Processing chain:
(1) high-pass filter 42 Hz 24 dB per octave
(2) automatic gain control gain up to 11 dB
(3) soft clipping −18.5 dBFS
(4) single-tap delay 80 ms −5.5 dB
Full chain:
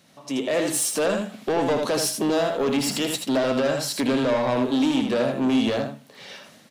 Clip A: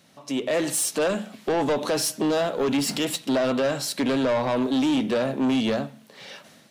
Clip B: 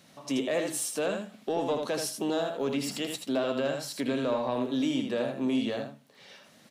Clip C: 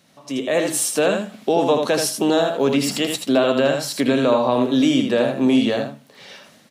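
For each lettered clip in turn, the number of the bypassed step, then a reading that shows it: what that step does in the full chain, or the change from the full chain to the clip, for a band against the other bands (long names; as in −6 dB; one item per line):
4, change in momentary loudness spread −1 LU
2, change in crest factor +4.0 dB
3, distortion level −10 dB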